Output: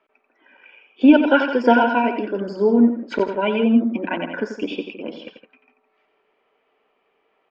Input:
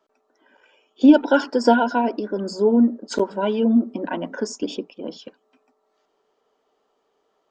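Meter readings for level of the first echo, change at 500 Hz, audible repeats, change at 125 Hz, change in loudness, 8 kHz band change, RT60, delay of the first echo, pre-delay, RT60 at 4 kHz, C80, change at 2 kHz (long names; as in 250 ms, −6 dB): −8.5 dB, +1.0 dB, 2, +1.0 dB, +1.5 dB, below −15 dB, no reverb audible, 89 ms, no reverb audible, no reverb audible, no reverb audible, +5.5 dB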